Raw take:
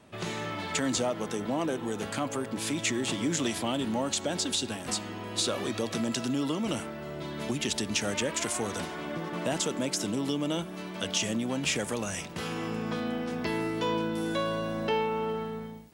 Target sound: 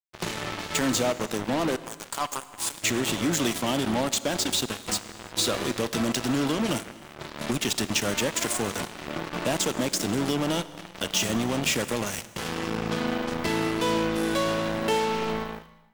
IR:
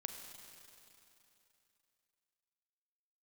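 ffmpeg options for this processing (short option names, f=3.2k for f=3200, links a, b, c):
-filter_complex "[0:a]asettb=1/sr,asplit=3[a][b][c];[a]atrim=end=1.764[d];[b]atrim=start=1.76:end=2.81,asetpts=PTS-STARTPTS,afade=t=in:d=0.004:c=qsin,afade=t=out:st=1.046:d=0.004:c=qsin,equalizer=f=125:t=o:w=1:g=-11,equalizer=f=250:t=o:w=1:g=-10,equalizer=f=500:t=o:w=1:g=-9,equalizer=f=1k:t=o:w=1:g=11,equalizer=f=2k:t=o:w=1:g=-12,equalizer=f=8k:t=o:w=1:g=5[e];[c]atrim=start=2.806[f];[d][e]acrossfade=d=0.004:c1=hsin:c2=qsin[g];[g][f]acrossfade=d=0.004:c1=qsin:c2=hsin,acrusher=bits=4:mix=0:aa=0.5,asplit=2[h][i];[1:a]atrim=start_sample=2205,afade=t=out:st=0.41:d=0.01,atrim=end_sample=18522[j];[i][j]afir=irnorm=-1:irlink=0,volume=-3dB[k];[h][k]amix=inputs=2:normalize=0"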